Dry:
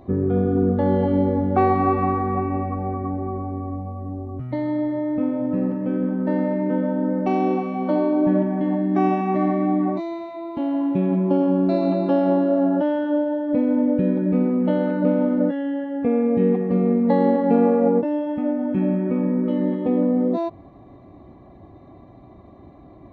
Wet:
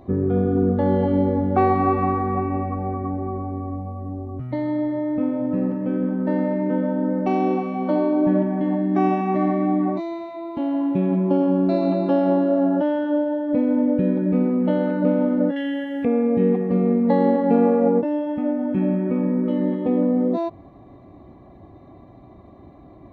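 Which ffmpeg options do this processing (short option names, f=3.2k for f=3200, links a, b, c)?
-filter_complex "[0:a]asettb=1/sr,asplit=3[a][b][c];[a]atrim=end=15.564[d];[b]atrim=start=15.56:end=16.05,asetpts=PTS-STARTPTS,afade=t=in:d=0.004:c=qsin,afade=t=out:st=0.486:d=0.004:c=qsin,highshelf=f=1.6k:t=q:w=1.5:g=11[e];[c]atrim=start=16.046[f];[d][e]acrossfade=d=0.004:c1=hsin:c2=qsin[g];[g][f]acrossfade=d=0.004:c1=qsin:c2=hsin"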